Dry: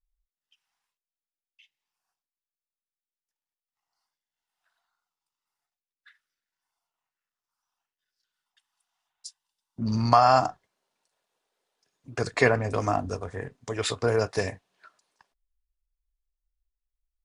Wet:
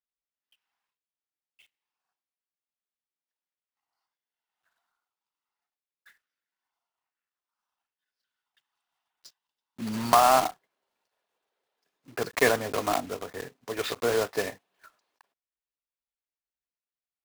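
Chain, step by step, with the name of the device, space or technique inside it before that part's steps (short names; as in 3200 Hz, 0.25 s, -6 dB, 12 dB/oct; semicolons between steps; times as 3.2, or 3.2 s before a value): early digital voice recorder (BPF 220–3700 Hz; block floating point 3-bit); gain -1 dB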